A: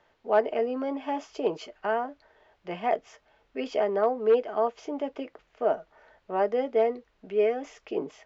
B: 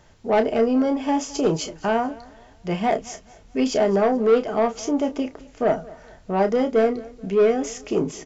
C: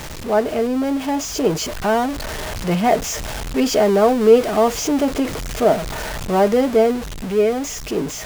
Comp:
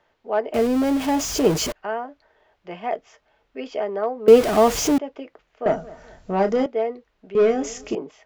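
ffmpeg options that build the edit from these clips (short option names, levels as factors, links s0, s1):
-filter_complex "[2:a]asplit=2[s0][s1];[1:a]asplit=2[s2][s3];[0:a]asplit=5[s4][s5][s6][s7][s8];[s4]atrim=end=0.542[s9];[s0]atrim=start=0.538:end=1.722[s10];[s5]atrim=start=1.718:end=4.282[s11];[s1]atrim=start=4.278:end=4.982[s12];[s6]atrim=start=4.978:end=5.662[s13];[s2]atrim=start=5.658:end=6.662[s14];[s7]atrim=start=6.658:end=7.352[s15];[s3]atrim=start=7.348:end=7.952[s16];[s8]atrim=start=7.948[s17];[s9][s10]acrossfade=d=0.004:c1=hsin:c2=hsin[s18];[s18][s11]acrossfade=d=0.004:c1=hsin:c2=hsin[s19];[s19][s12]acrossfade=d=0.004:c1=hsin:c2=hsin[s20];[s20][s13]acrossfade=d=0.004:c1=hsin:c2=hsin[s21];[s21][s14]acrossfade=d=0.004:c1=hsin:c2=hsin[s22];[s22][s15]acrossfade=d=0.004:c1=hsin:c2=hsin[s23];[s23][s16]acrossfade=d=0.004:c1=hsin:c2=hsin[s24];[s24][s17]acrossfade=d=0.004:c1=hsin:c2=hsin"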